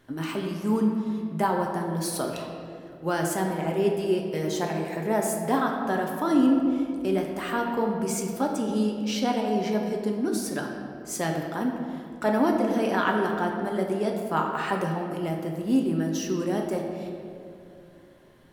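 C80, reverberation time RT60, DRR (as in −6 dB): 4.5 dB, 2.6 s, 0.5 dB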